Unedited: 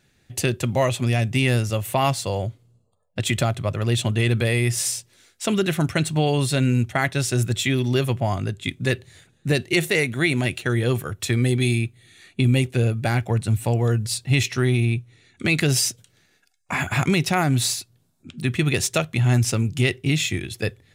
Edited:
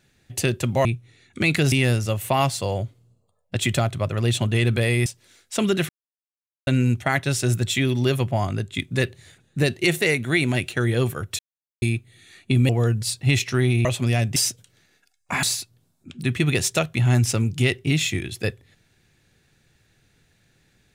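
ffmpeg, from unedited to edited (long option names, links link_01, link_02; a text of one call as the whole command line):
ffmpeg -i in.wav -filter_complex "[0:a]asplit=12[link_01][link_02][link_03][link_04][link_05][link_06][link_07][link_08][link_09][link_10][link_11][link_12];[link_01]atrim=end=0.852[link_13];[link_02]atrim=start=14.888:end=15.762[link_14];[link_03]atrim=start=1.358:end=4.702[link_15];[link_04]atrim=start=4.948:end=5.78,asetpts=PTS-STARTPTS,afade=type=out:start_time=0.828:duration=0.004:curve=hsin[link_16];[link_05]atrim=start=5.78:end=6.56,asetpts=PTS-STARTPTS,volume=0[link_17];[link_06]atrim=start=6.56:end=11.28,asetpts=PTS-STARTPTS,afade=type=in:duration=0.004:curve=hsin,afade=type=out:start_time=4.716:duration=0.004:curve=hsin[link_18];[link_07]atrim=start=11.28:end=11.71,asetpts=PTS-STARTPTS,volume=0[link_19];[link_08]atrim=start=11.71:end=12.582,asetpts=PTS-STARTPTS,afade=type=in:duration=0.004:curve=hsin[link_20];[link_09]atrim=start=13.728:end=14.892[link_21];[link_10]atrim=start=0.848:end=1.362[link_22];[link_11]atrim=start=15.758:end=16.832[link_23];[link_12]atrim=start=17.618[link_24];[link_13][link_14]acrossfade=duration=0.004:curve1=hsin:curve2=hsin[link_25];[link_25][link_15]acrossfade=duration=0.004:curve1=hsin:curve2=hsin[link_26];[link_16][link_17][link_18][link_19][link_20]concat=n=5:v=0:a=1[link_27];[link_26][link_27]acrossfade=duration=0.004:curve1=hsin:curve2=hsin[link_28];[link_28][link_21]acrossfade=duration=0.004:curve1=hsin:curve2=hsin[link_29];[link_29][link_22]acrossfade=duration=0.004:curve1=hsin:curve2=hsin[link_30];[link_30][link_23]acrossfade=duration=0.004:curve1=hsin:curve2=hsin[link_31];[link_31][link_24]acrossfade=duration=0.004:curve1=hsin:curve2=hsin" out.wav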